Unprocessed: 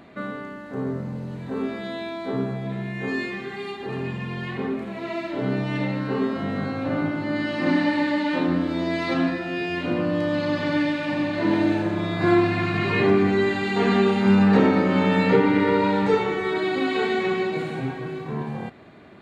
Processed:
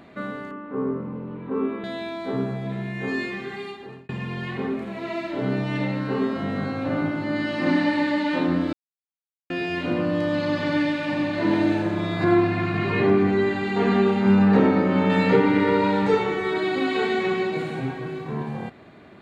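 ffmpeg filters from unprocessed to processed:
-filter_complex "[0:a]asettb=1/sr,asplit=3[a][b][c];[a]atrim=end=0.514[d];[b]atrim=start=0.51:end=1.84,asetpts=PTS-STARTPTS,afade=t=in:d=0.004:c=qsin,afade=t=out:st=1.326:d=0.004:c=qsin,highpass=100,equalizer=f=120:t=q:w=4:g=-8,equalizer=f=300:t=q:w=4:g=4,equalizer=f=440:t=q:w=4:g=5,equalizer=f=680:t=q:w=4:g=-8,equalizer=f=1.1k:t=q:w=4:g=8,equalizer=f=1.8k:t=q:w=4:g=-8,lowpass=f=2.6k:w=0.5412,lowpass=f=2.6k:w=1.3066[e];[c]atrim=start=1.836[f];[d][e]acrossfade=d=0.004:c1=hsin:c2=qsin[g];[g][f]acrossfade=d=0.004:c1=qsin:c2=hsin,asettb=1/sr,asplit=3[h][i][j];[h]atrim=end=12.244[k];[i]atrim=start=12.24:end=15.1,asetpts=PTS-STARTPTS,afade=t=in:d=0.004:c=qsin,afade=t=out:st=2.856:d=0.004:c=qsin,highshelf=f=2.7k:g=-7.5[l];[j]atrim=start=15.096[m];[k][l]acrossfade=d=0.004:c1=hsin:c2=qsin[n];[n][m]acrossfade=d=0.004:c1=qsin:c2=hsin,asplit=4[o][p][q][r];[o]atrim=end=4.09,asetpts=PTS-STARTPTS,afade=t=out:st=3.54:d=0.55[s];[p]atrim=start=4.09:end=8.73,asetpts=PTS-STARTPTS,afade=t=in:d=0.004:c=hsin,afade=t=out:st=4.636:d=0.004:c=hsin[t];[q]atrim=start=8.73:end=9.5,asetpts=PTS-STARTPTS,volume=0[u];[r]atrim=start=9.5,asetpts=PTS-STARTPTS,afade=t=in:d=0.004:c=hsin[v];[s][t][u][v]concat=n=4:v=0:a=1"

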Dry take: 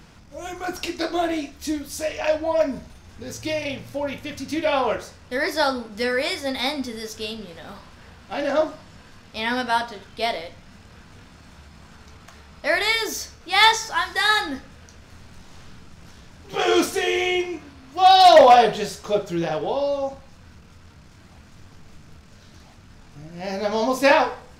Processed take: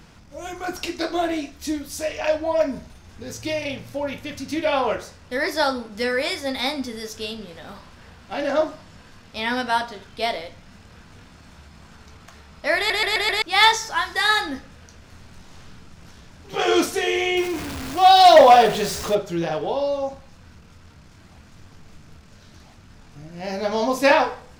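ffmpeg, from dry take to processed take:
-filter_complex "[0:a]asettb=1/sr,asplit=3[a][b][c];[a]atrim=end=17.374[d];[b]atrim=start=17.37:end=19.15,asetpts=PTS-STARTPTS,afade=t=in:d=0.004:c=qsin,afade=t=out:st=1.776:d=0.004:c=qsin,aeval=exprs='val(0)+0.5*0.0473*sgn(val(0))':c=same[e];[c]atrim=start=19.146[f];[d][e]acrossfade=d=0.004:c1=hsin:c2=qsin[g];[g][f]acrossfade=d=0.004:c1=qsin:c2=hsin,asplit=6[h][i][j][k][l][m];[h]atrim=end=12.902[n];[i]atrim=start=12.768:end=12.902[o];[j]atrim=start=12.768:end=12.902[p];[k]atrim=start=12.768:end=12.902[q];[l]atrim=start=12.768:end=12.902[r];[m]atrim=start=13.418[s];[n][o]acrossfade=d=0.004:c1=hsin:c2=hsin[t];[t][p]acrossfade=d=0.004:c1=hsin:c2=hsin[u];[u][q]acrossfade=d=0.004:c1=hsin:c2=hsin[v];[v][r]acrossfade=d=0.004:c1=hsin:c2=hsin[w];[w][s]acrossfade=d=0.004:c1=hsin:c2=hsin"

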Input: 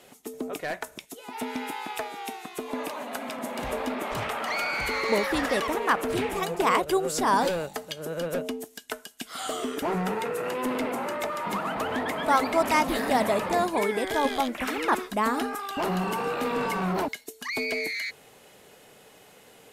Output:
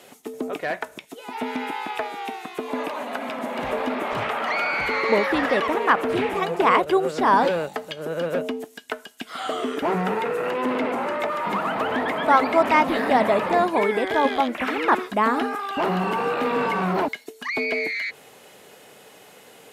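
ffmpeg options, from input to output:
-filter_complex "[0:a]asettb=1/sr,asplit=3[a][b][c];[a]atrim=end=10.514[d];[b]atrim=start=10.51:end=11.2,asetpts=PTS-STARTPTS,afade=t=in:d=0.004:c=qsin,afade=t=out:st=0.686:d=0.004:c=qsin,highshelf=f=10k:g=-10[e];[c]atrim=start=11.196[f];[d][e]acrossfade=d=0.004:c1=hsin:c2=qsin[g];[g][f]acrossfade=d=0.004:c1=qsin:c2=hsin,highpass=f=170:p=1,acrossover=split=3600[h][i];[i]acompressor=threshold=-55dB:ratio=4:attack=1:release=60[j];[h][j]amix=inputs=2:normalize=0,volume=5.5dB"

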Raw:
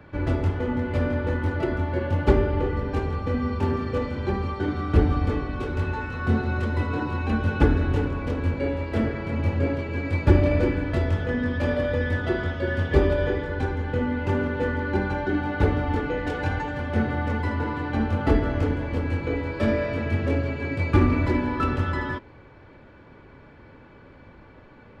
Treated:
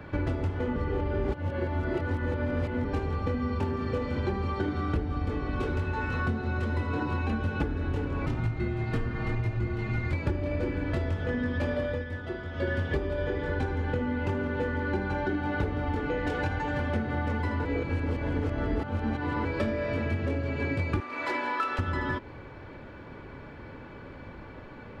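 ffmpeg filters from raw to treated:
-filter_complex "[0:a]asettb=1/sr,asplit=3[a][b][c];[a]atrim=end=8.264[d];[b]atrim=start=8.26:end=10.13,asetpts=PTS-STARTPTS,afade=t=in:d=0.004:c=qsin,afade=t=out:st=1.866:d=0.004:c=qsin,afreqshift=-200[e];[c]atrim=start=10.126[f];[d][e]acrossfade=d=0.004:c1=hsin:c2=qsin[g];[g][f]acrossfade=d=0.004:c1=qsin:c2=hsin,asettb=1/sr,asplit=3[h][i][j];[h]atrim=end=21.004[k];[i]atrim=start=21:end=21.79,asetpts=PTS-STARTPTS,afade=t=in:d=0.004:c=qsin,afade=t=out:st=0.786:d=0.004:c=qsin,highpass=710[l];[j]atrim=start=21.786[m];[k][l]acrossfade=d=0.004:c1=hsin:c2=qsin[n];[n][m]acrossfade=d=0.004:c1=qsin:c2=hsin,asplit=7[o][p][q][r][s][t][u];[o]atrim=end=0.762[v];[p]atrim=start=0.758:end=2.852,asetpts=PTS-STARTPTS,areverse[w];[q]atrim=start=2.848:end=12.05,asetpts=PTS-STARTPTS,afade=t=out:st=8.982:d=0.22:silence=0.177828[x];[r]atrim=start=12.05:end=12.51,asetpts=PTS-STARTPTS,volume=-15dB[y];[s]atrim=start=12.51:end=17.652,asetpts=PTS-STARTPTS,afade=t=in:d=0.22:silence=0.177828[z];[t]atrim=start=17.648:end=19.452,asetpts=PTS-STARTPTS,areverse[aa];[u]atrim=start=19.448[ab];[v][w]acrossfade=d=0.004:c1=hsin:c2=hsin[ac];[x][y][z]concat=n=3:v=0:a=1[ad];[ac][ad]acrossfade=d=0.004:c1=hsin:c2=hsin[ae];[ae][aa]acrossfade=d=0.004:c1=hsin:c2=hsin[af];[af][ab]acrossfade=d=0.004:c1=hsin:c2=hsin,acompressor=threshold=-30dB:ratio=12,volume=4.5dB"

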